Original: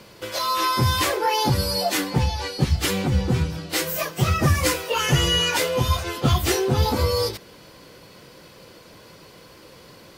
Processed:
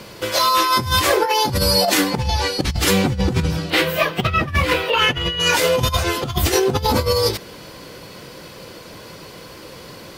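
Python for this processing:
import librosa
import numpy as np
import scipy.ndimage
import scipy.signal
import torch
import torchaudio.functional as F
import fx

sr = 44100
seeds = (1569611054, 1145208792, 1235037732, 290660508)

y = fx.high_shelf_res(x, sr, hz=4600.0, db=-11.5, q=1.5, at=(3.7, 5.4))
y = fx.over_compress(y, sr, threshold_db=-23.0, ratio=-0.5)
y = y * librosa.db_to_amplitude(6.0)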